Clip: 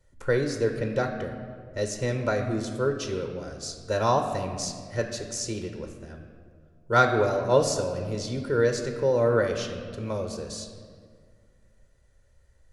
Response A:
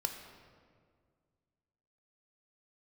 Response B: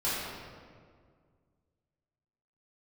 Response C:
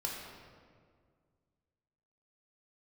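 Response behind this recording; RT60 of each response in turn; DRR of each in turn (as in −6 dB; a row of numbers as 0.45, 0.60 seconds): A; 1.9, 1.9, 1.9 seconds; 4.5, −11.5, −2.5 decibels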